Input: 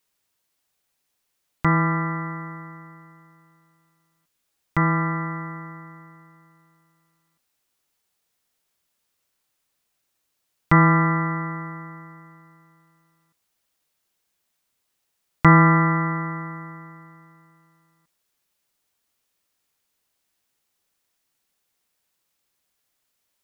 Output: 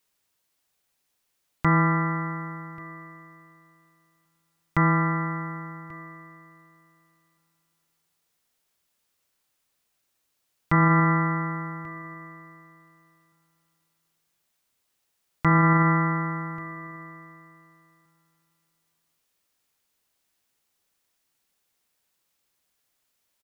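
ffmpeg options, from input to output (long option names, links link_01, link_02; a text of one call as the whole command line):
ffmpeg -i in.wav -af "alimiter=limit=-10.5dB:level=0:latency=1:release=45,aecho=1:1:1137:0.0794" out.wav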